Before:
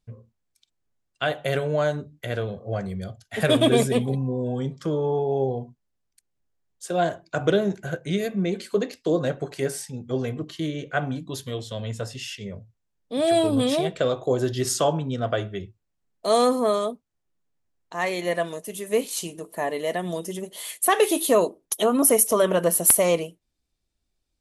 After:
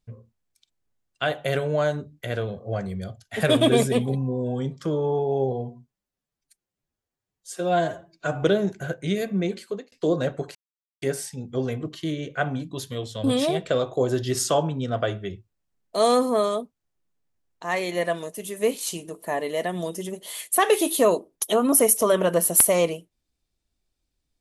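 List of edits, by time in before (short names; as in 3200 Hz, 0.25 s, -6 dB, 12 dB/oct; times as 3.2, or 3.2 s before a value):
5.52–7.46 stretch 1.5×
8.49–8.95 fade out
9.58 insert silence 0.47 s
11.8–13.54 cut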